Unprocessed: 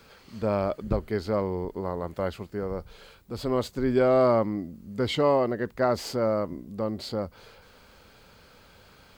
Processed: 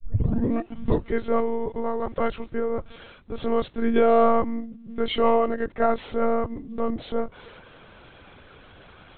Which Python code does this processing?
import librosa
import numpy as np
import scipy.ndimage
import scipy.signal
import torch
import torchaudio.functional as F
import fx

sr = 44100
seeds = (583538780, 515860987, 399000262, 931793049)

p1 = fx.tape_start_head(x, sr, length_s=1.12)
p2 = fx.rider(p1, sr, range_db=10, speed_s=2.0)
p3 = p1 + (p2 * librosa.db_to_amplitude(1.5))
p4 = fx.lpc_monotone(p3, sr, seeds[0], pitch_hz=230.0, order=16)
y = p4 * librosa.db_to_amplitude(-4.0)